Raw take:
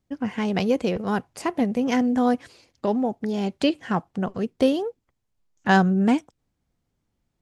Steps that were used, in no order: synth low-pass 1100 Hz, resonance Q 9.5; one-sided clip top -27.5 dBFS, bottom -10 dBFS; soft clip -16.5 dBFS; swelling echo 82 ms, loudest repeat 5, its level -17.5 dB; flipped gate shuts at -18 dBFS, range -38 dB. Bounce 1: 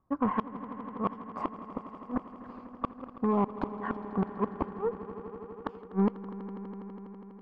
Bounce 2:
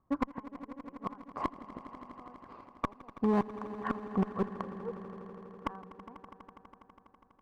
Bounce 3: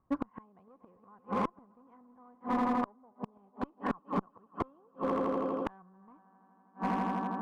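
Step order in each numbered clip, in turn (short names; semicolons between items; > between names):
one-sided clip > synth low-pass > soft clip > flipped gate > swelling echo; flipped gate > soft clip > synth low-pass > one-sided clip > swelling echo; swelling echo > soft clip > synth low-pass > flipped gate > one-sided clip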